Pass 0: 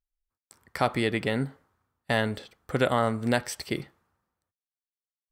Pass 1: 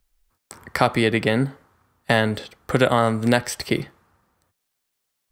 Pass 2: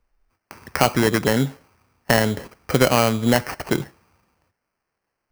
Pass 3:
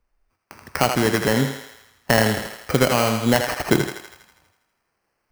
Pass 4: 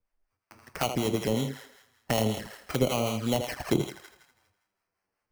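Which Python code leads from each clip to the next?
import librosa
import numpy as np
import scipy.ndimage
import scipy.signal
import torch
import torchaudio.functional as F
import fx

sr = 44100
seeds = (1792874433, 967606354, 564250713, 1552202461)

y1 = fx.band_squash(x, sr, depth_pct=40)
y1 = y1 * 10.0 ** (7.0 / 20.0)
y2 = fx.high_shelf(y1, sr, hz=5900.0, db=-5.5)
y2 = fx.sample_hold(y2, sr, seeds[0], rate_hz=3600.0, jitter_pct=0)
y2 = y2 * 10.0 ** (1.0 / 20.0)
y3 = fx.rider(y2, sr, range_db=4, speed_s=0.5)
y3 = fx.echo_thinned(y3, sr, ms=81, feedback_pct=61, hz=440.0, wet_db=-5.5)
y4 = fx.harmonic_tremolo(y3, sr, hz=5.3, depth_pct=50, crossover_hz=640.0)
y4 = fx.env_flanger(y4, sr, rest_ms=10.5, full_db=-19.0)
y4 = y4 * 10.0 ** (-4.5 / 20.0)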